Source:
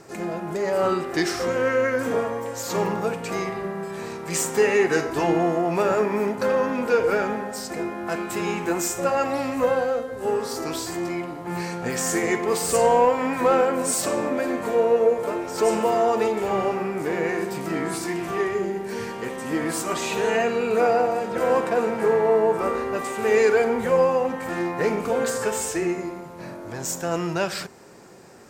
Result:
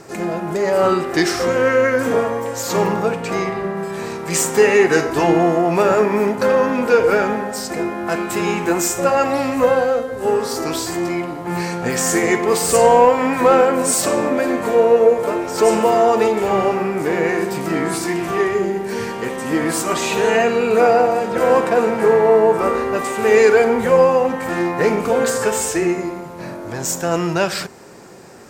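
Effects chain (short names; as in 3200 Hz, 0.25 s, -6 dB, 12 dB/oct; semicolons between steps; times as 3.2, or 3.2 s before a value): 3.02–3.77 high shelf 7200 Hz -7.5 dB; gain +6.5 dB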